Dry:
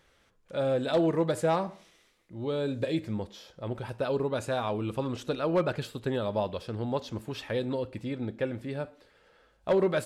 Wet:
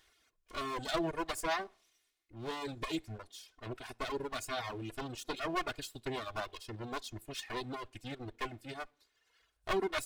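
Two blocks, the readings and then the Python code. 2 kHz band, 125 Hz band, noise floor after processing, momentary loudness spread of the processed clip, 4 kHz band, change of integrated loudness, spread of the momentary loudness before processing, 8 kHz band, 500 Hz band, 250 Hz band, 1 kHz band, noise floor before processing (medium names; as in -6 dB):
-1.0 dB, -12.5 dB, -78 dBFS, 11 LU, -0.5 dB, -8.5 dB, 11 LU, +2.0 dB, -12.0 dB, -10.5 dB, -3.5 dB, -66 dBFS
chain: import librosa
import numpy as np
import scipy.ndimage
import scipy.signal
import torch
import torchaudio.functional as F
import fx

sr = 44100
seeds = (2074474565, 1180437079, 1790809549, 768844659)

y = fx.lower_of_two(x, sr, delay_ms=2.8)
y = fx.dereverb_blind(y, sr, rt60_s=1.3)
y = fx.tilt_shelf(y, sr, db=-5.0, hz=1400.0)
y = y * librosa.db_to_amplitude(-2.5)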